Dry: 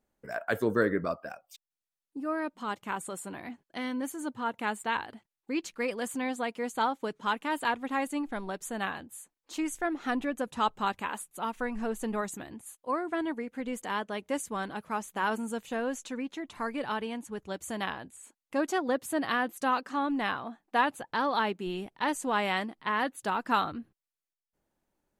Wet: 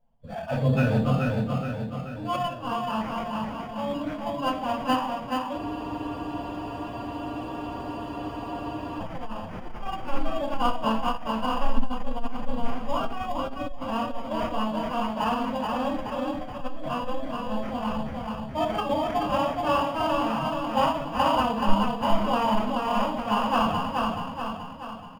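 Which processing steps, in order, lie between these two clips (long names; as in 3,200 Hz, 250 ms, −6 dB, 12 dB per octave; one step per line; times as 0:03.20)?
spectral magnitudes quantised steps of 30 dB
phaser with its sweep stopped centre 790 Hz, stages 4
on a send: repeating echo 428 ms, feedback 53%, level −3.5 dB
on the sum: rectangular room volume 450 cubic metres, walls furnished, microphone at 4.6 metres
sample-rate reduction 3,900 Hz, jitter 0%
bass and treble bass +8 dB, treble −13 dB
phase-vocoder pitch shift with formants kept +2 semitones
high-shelf EQ 4,200 Hz −6.5 dB
frozen spectrum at 0:05.60, 3.39 s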